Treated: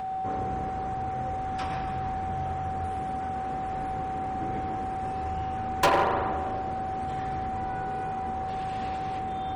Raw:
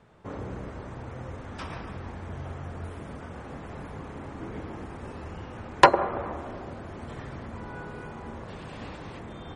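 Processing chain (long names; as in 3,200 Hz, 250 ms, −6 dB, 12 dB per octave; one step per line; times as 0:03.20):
upward compression, threshold −39 dBFS
steady tone 760 Hz −33 dBFS
spring reverb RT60 1.3 s, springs 38 ms, chirp 20 ms, DRR 8.5 dB
hard clipping −19.5 dBFS, distortion −6 dB
level +2 dB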